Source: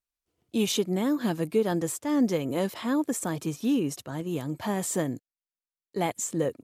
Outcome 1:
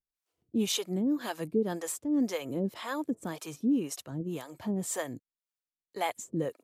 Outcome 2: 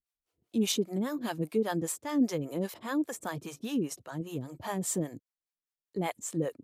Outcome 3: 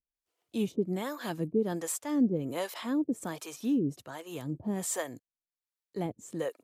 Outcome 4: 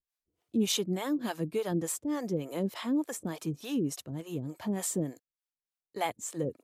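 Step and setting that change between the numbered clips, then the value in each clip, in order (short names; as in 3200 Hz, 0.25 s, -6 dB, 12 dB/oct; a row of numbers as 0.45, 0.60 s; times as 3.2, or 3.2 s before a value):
harmonic tremolo, rate: 1.9, 5, 1.3, 3.4 Hz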